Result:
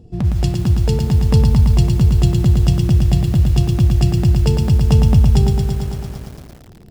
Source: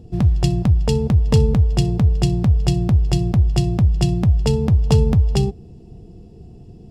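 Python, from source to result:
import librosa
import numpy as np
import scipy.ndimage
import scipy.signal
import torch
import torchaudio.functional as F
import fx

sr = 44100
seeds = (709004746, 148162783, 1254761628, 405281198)

y = fx.echo_crushed(x, sr, ms=112, feedback_pct=80, bits=6, wet_db=-5.0)
y = F.gain(torch.from_numpy(y), -2.0).numpy()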